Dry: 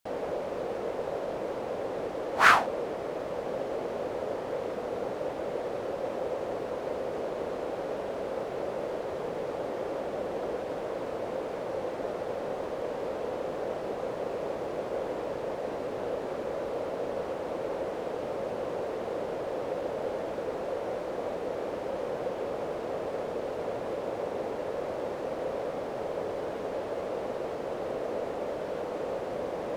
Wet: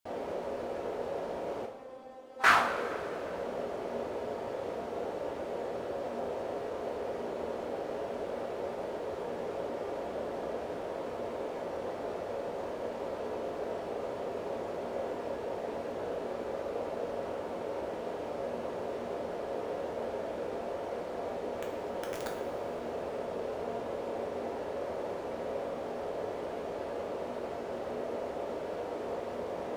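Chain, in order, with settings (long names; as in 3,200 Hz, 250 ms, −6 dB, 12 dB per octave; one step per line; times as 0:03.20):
0:01.65–0:02.44: tuned comb filter 260 Hz, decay 0.22 s, harmonics all, mix 100%
0:21.58–0:22.30: wrap-around overflow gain 24 dB
coupled-rooms reverb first 0.53 s, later 2.9 s, from −15 dB, DRR 0 dB
level −6 dB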